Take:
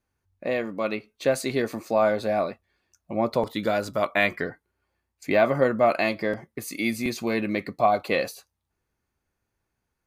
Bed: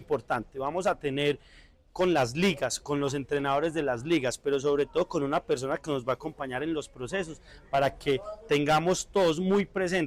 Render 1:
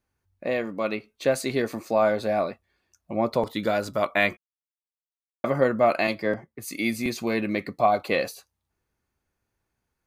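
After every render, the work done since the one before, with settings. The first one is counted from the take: 4.37–5.44 mute; 6.07–6.68 three-band expander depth 100%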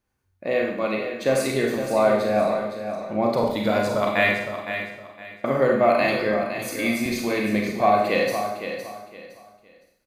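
on a send: feedback echo 0.512 s, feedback 27%, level -9 dB; on the sum: Schroeder reverb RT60 0.74 s, combs from 30 ms, DRR 0 dB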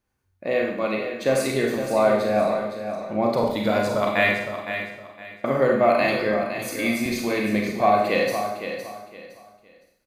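nothing audible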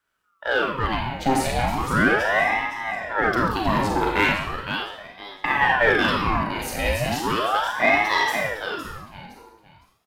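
in parallel at -4.5 dB: hard clip -19.5 dBFS, distortion -10 dB; on the sum: ring modulator with a swept carrier 860 Hz, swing 70%, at 0.37 Hz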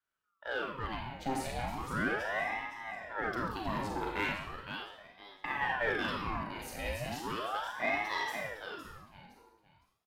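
gain -14 dB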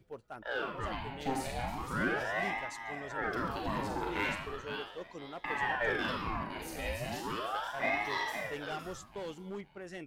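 add bed -17.5 dB

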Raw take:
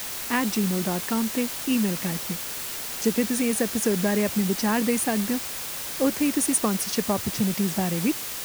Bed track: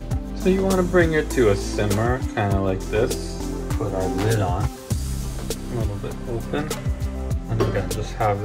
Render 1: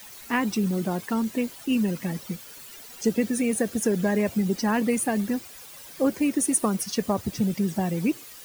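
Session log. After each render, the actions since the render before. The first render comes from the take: denoiser 14 dB, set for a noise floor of -33 dBFS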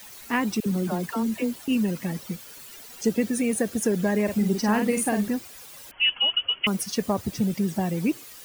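0.6–1.68 dispersion lows, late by 65 ms, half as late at 580 Hz; 4.23–5.28 doubler 48 ms -6 dB; 5.91–6.67 inverted band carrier 3200 Hz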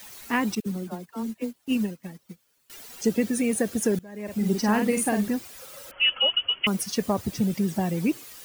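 0.55–2.7 upward expander 2.5:1, over -37 dBFS; 3.99–4.49 fade in quadratic, from -23 dB; 5.59–6.29 small resonant body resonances 540/1300 Hz, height 15 dB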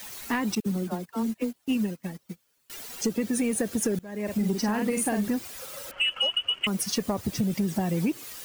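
compressor 6:1, threshold -26 dBFS, peak gain reduction 9.5 dB; sample leveller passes 1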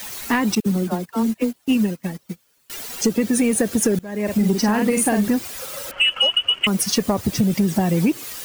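gain +8 dB

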